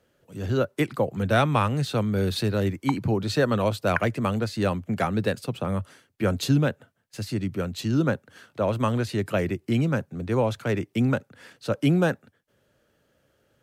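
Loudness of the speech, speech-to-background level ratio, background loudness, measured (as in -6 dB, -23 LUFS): -25.5 LUFS, 9.0 dB, -34.5 LUFS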